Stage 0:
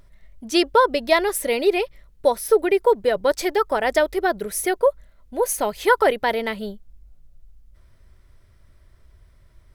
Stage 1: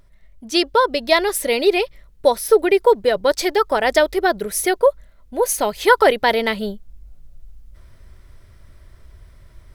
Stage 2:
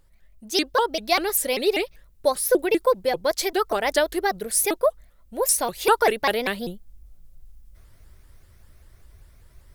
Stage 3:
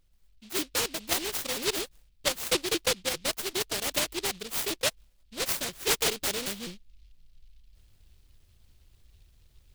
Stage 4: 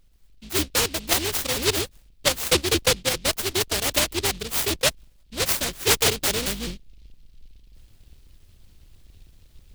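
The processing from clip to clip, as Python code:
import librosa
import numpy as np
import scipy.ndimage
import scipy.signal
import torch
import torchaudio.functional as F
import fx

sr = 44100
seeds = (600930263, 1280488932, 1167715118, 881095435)

y1 = fx.dynamic_eq(x, sr, hz=4300.0, q=1.2, threshold_db=-39.0, ratio=4.0, max_db=5)
y1 = fx.rider(y1, sr, range_db=10, speed_s=2.0)
y1 = F.gain(torch.from_numpy(y1), 2.5).numpy()
y2 = fx.high_shelf(y1, sr, hz=7800.0, db=11.5)
y2 = fx.vibrato_shape(y2, sr, shape='saw_up', rate_hz=5.1, depth_cents=250.0)
y2 = F.gain(torch.from_numpy(y2), -6.0).numpy()
y3 = fx.noise_mod_delay(y2, sr, seeds[0], noise_hz=3400.0, depth_ms=0.34)
y3 = F.gain(torch.from_numpy(y3), -8.0).numpy()
y4 = fx.octave_divider(y3, sr, octaves=2, level_db=0.0)
y4 = F.gain(torch.from_numpy(y4), 6.5).numpy()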